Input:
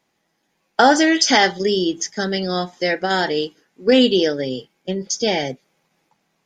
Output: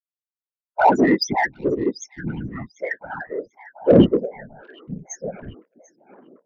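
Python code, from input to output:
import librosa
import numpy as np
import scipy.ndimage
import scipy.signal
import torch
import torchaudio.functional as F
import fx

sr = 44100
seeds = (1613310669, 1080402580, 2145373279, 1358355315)

p1 = fx.bin_expand(x, sr, power=2.0)
p2 = fx.low_shelf(p1, sr, hz=80.0, db=6.5)
p3 = fx.spec_topn(p2, sr, count=4)
p4 = fx.whisperise(p3, sr, seeds[0])
p5 = 10.0 ** (-18.5 / 20.0) * np.tanh(p4 / 10.0 ** (-18.5 / 20.0))
p6 = p4 + F.gain(torch.from_numpy(p5), -4.5).numpy()
p7 = fx.fixed_phaser(p6, sr, hz=320.0, stages=6, at=(4.16, 5.4), fade=0.02)
p8 = p7 + fx.echo_stepped(p7, sr, ms=742, hz=3400.0, octaves=-0.7, feedback_pct=70, wet_db=-8.0, dry=0)
p9 = fx.upward_expand(p8, sr, threshold_db=-29.0, expansion=1.5)
y = F.gain(torch.from_numpy(p9), 2.5).numpy()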